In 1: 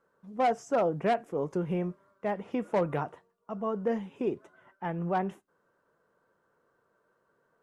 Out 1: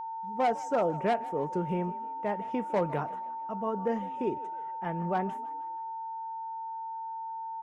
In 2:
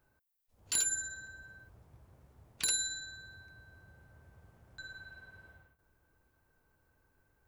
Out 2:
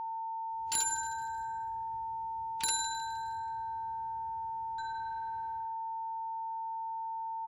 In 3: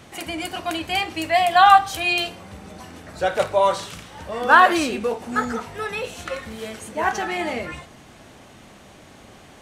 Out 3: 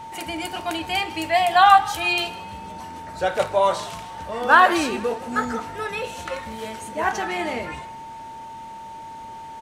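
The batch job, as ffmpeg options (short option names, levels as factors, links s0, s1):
-filter_complex "[0:a]asplit=5[s0][s1][s2][s3][s4];[s1]adelay=156,afreqshift=45,volume=0.112[s5];[s2]adelay=312,afreqshift=90,volume=0.0562[s6];[s3]adelay=468,afreqshift=135,volume=0.0282[s7];[s4]adelay=624,afreqshift=180,volume=0.014[s8];[s0][s5][s6][s7][s8]amix=inputs=5:normalize=0,aeval=exprs='val(0)+0.02*sin(2*PI*900*n/s)':c=same,volume=0.891"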